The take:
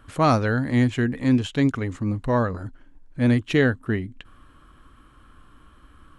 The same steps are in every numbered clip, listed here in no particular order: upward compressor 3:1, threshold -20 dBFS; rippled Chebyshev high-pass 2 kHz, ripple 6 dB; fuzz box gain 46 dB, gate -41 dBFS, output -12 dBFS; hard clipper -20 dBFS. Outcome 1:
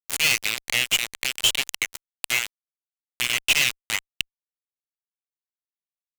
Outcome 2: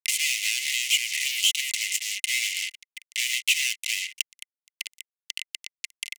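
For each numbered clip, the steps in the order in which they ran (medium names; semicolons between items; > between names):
hard clipper > rippled Chebyshev high-pass > fuzz box > upward compressor; hard clipper > fuzz box > rippled Chebyshev high-pass > upward compressor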